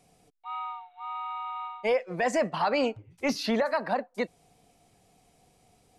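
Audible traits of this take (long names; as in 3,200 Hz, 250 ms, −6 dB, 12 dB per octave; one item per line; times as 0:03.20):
background noise floor −65 dBFS
spectral slope −2.5 dB per octave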